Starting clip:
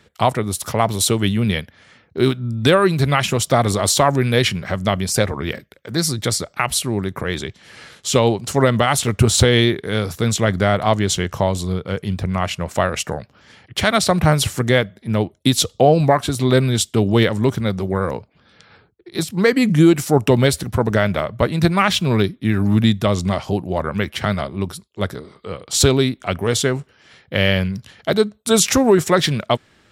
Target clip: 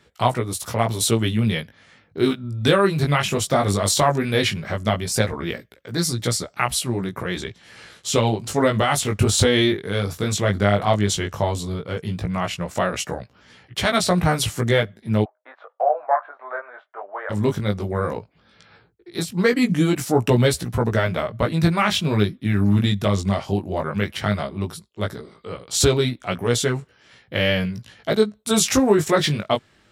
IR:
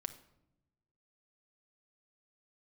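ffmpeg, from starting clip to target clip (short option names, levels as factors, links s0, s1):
-filter_complex "[0:a]flanger=delay=16.5:depth=3.8:speed=0.15,asplit=3[s0][s1][s2];[s0]afade=t=out:st=15.24:d=0.02[s3];[s1]asuperpass=centerf=1000:order=8:qfactor=0.93,afade=t=in:st=15.24:d=0.02,afade=t=out:st=17.29:d=0.02[s4];[s2]afade=t=in:st=17.29:d=0.02[s5];[s3][s4][s5]amix=inputs=3:normalize=0"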